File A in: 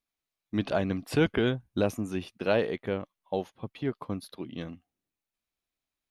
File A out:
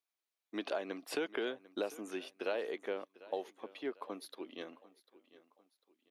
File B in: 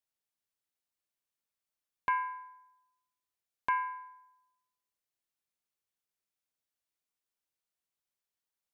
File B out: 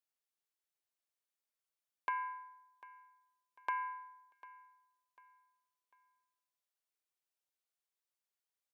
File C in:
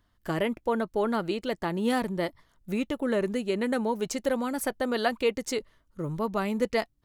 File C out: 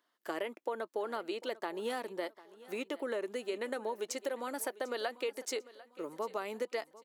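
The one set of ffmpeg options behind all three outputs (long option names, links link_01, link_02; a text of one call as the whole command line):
ffmpeg -i in.wav -filter_complex "[0:a]highpass=frequency=330:width=0.5412,highpass=frequency=330:width=1.3066,acompressor=threshold=-29dB:ratio=6,asplit=2[link_01][link_02];[link_02]aecho=0:1:747|1494|2241:0.112|0.0426|0.0162[link_03];[link_01][link_03]amix=inputs=2:normalize=0,volume=-3.5dB" out.wav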